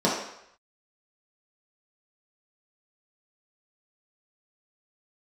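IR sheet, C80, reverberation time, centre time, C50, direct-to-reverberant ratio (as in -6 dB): 6.0 dB, 0.75 s, 49 ms, 2.5 dB, -6.5 dB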